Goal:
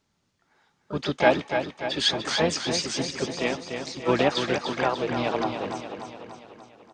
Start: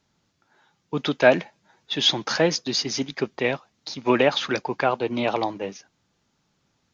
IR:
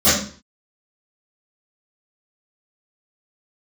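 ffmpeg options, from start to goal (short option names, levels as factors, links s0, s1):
-filter_complex "[0:a]aecho=1:1:293|586|879|1172|1465|1758|2051:0.447|0.255|0.145|0.0827|0.0472|0.0269|0.0153,asplit=3[s0][s1][s2];[s1]asetrate=22050,aresample=44100,atempo=2,volume=0.282[s3];[s2]asetrate=58866,aresample=44100,atempo=0.749154,volume=0.501[s4];[s0][s3][s4]amix=inputs=3:normalize=0,volume=0.596"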